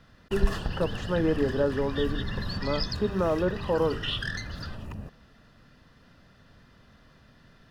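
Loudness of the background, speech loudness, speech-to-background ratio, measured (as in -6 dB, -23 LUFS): -34.5 LUFS, -29.5 LUFS, 5.0 dB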